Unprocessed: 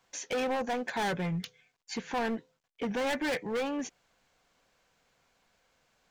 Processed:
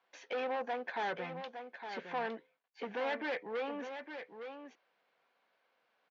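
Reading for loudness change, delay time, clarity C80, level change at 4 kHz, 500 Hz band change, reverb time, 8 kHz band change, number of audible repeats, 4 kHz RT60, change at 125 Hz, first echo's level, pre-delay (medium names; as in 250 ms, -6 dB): -6.5 dB, 861 ms, no reverb, -8.0 dB, -4.5 dB, no reverb, under -20 dB, 1, no reverb, -17.0 dB, -8.5 dB, no reverb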